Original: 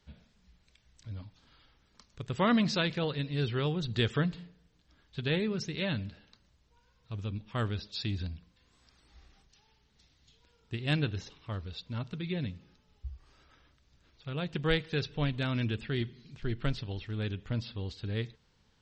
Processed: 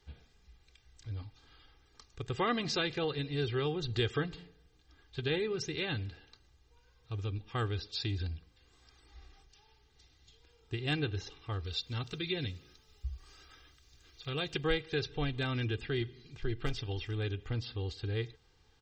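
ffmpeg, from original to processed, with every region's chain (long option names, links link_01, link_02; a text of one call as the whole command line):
ffmpeg -i in.wav -filter_complex "[0:a]asettb=1/sr,asplit=3[link_01][link_02][link_03];[link_01]atrim=end=11.644[link_04];[link_02]atrim=start=11.64:end=14.63,asetpts=PTS-STARTPTS,afade=type=in:duration=0.004:curve=qsin,afade=type=out:start_time=2.986:duration=0.004:curve=qsin,highshelf=frequency=3000:gain=11.5,bandreject=frequency=840:width=17[link_05];[link_03]atrim=start=14.626[link_06];[link_04][link_05]acrossfade=duration=0.004:curve1=hsin:curve2=qsin[link_07];[link_07][link_06]acrossfade=duration=0.004:curve1=qsin:curve2=hsin,asettb=1/sr,asplit=3[link_08][link_09][link_10];[link_08]atrim=end=16.664[link_11];[link_09]atrim=start=16.66:end=17.15,asetpts=PTS-STARTPTS,afade=type=in:duration=0.004:curve=qsin,afade=type=out:start_time=0.486:duration=0.004:curve=qsin,highshelf=frequency=3300:gain=7,bandreject=frequency=4100:width=7.8,asoftclip=type=hard:threshold=-25.5dB[link_12];[link_10]atrim=start=17.146[link_13];[link_11][link_12]acrossfade=duration=0.004:curve1=hsin:curve2=qsin[link_14];[link_14][link_13]acrossfade=duration=0.004:curve1=qsin:curve2=hsin,aecho=1:1:2.5:0.69,acompressor=threshold=-34dB:ratio=1.5" out.wav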